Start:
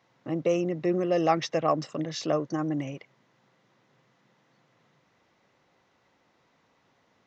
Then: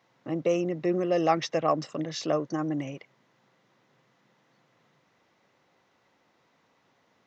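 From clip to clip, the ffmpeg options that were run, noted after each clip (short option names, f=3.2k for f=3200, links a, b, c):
-af "lowshelf=f=62:g=-11.5"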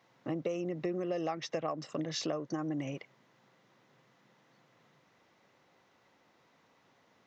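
-af "acompressor=threshold=-31dB:ratio=12"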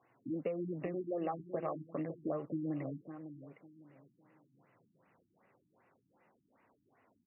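-filter_complex "[0:a]flanger=delay=2.7:depth=8.5:regen=-47:speed=0.29:shape=sinusoidal,asplit=2[a][b];[b]adelay=553,lowpass=f=3.3k:p=1,volume=-11dB,asplit=2[c][d];[d]adelay=553,lowpass=f=3.3k:p=1,volume=0.29,asplit=2[e][f];[f]adelay=553,lowpass=f=3.3k:p=1,volume=0.29[g];[a][c][e][g]amix=inputs=4:normalize=0,afftfilt=real='re*lt(b*sr/1024,320*pow(3000/320,0.5+0.5*sin(2*PI*2.6*pts/sr)))':imag='im*lt(b*sr/1024,320*pow(3000/320,0.5+0.5*sin(2*PI*2.6*pts/sr)))':win_size=1024:overlap=0.75,volume=1.5dB"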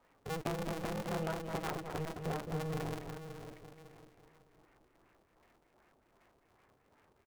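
-filter_complex "[0:a]aeval=exprs='clip(val(0),-1,0.00398)':c=same,asplit=2[a][b];[b]aecho=0:1:213:0.501[c];[a][c]amix=inputs=2:normalize=0,aeval=exprs='val(0)*sgn(sin(2*PI*160*n/s))':c=same,volume=2dB"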